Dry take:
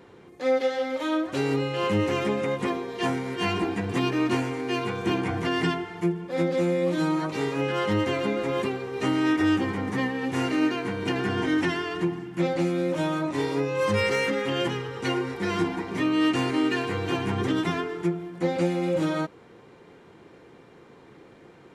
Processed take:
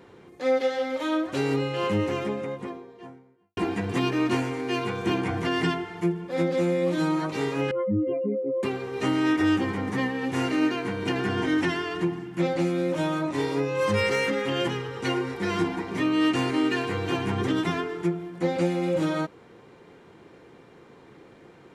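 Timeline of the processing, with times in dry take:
1.55–3.57 s: studio fade out
7.71–8.63 s: spectral contrast enhancement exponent 3.4

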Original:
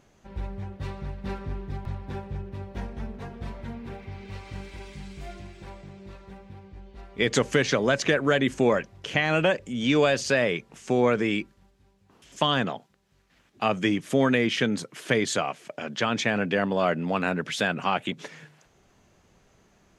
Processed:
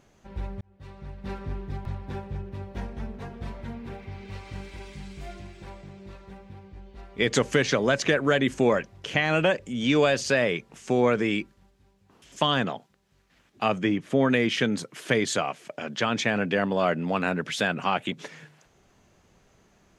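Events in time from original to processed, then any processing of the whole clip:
0.61–1.48 s: fade in
13.78–14.30 s: low-pass 2.2 kHz 6 dB/octave

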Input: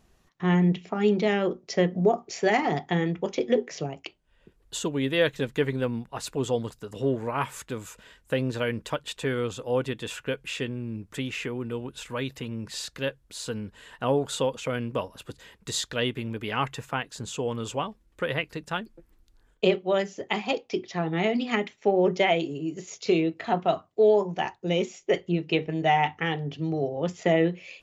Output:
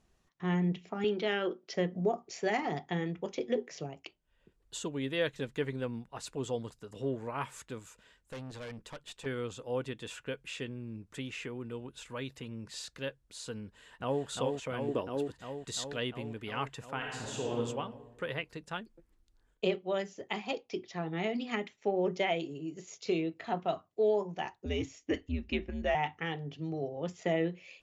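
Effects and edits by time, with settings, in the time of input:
1.04–1.74 s: cabinet simulation 250–6100 Hz, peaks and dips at 350 Hz +4 dB, 1.5 kHz +9 dB, 3.1 kHz +8 dB
7.79–9.26 s: valve stage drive 31 dB, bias 0.5
13.65–14.24 s: echo throw 350 ms, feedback 80%, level -3.5 dB
14.88–15.28 s: peaking EQ 340 Hz +12 dB
16.96–17.56 s: reverb throw, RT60 1.4 s, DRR -3 dB
24.65–25.95 s: frequency shift -96 Hz
whole clip: Chebyshev low-pass 9.4 kHz; trim -7.5 dB

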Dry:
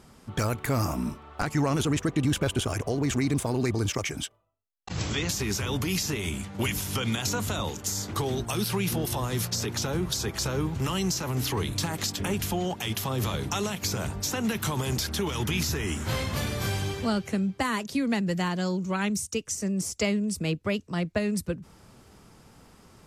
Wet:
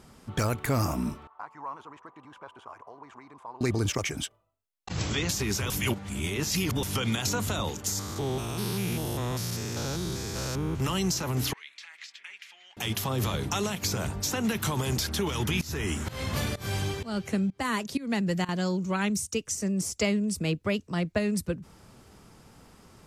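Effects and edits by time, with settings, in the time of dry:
1.27–3.61 s: band-pass filter 1 kHz, Q 6.1
5.70–6.83 s: reverse
7.99–10.80 s: spectrogram pixelated in time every 200 ms
11.53–12.77 s: ladder band-pass 2.4 kHz, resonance 55%
15.61–18.49 s: volume shaper 127 bpm, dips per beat 1, -21 dB, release 272 ms

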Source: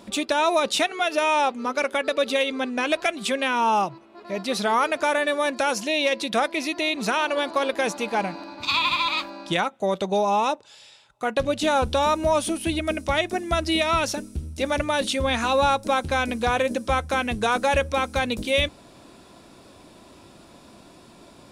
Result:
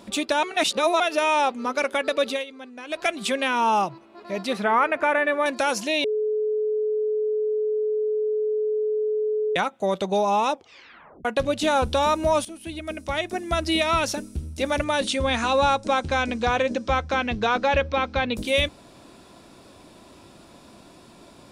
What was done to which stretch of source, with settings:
0.43–1.00 s: reverse
2.26–3.07 s: dip -14 dB, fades 0.20 s
4.53–5.46 s: resonant high shelf 3.1 kHz -12.5 dB, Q 1.5
6.04–9.56 s: bleep 428 Hz -21 dBFS
10.52 s: tape stop 0.73 s
12.45–13.71 s: fade in, from -15 dB
14.84–18.34 s: low-pass 11 kHz -> 4.2 kHz 24 dB/octave

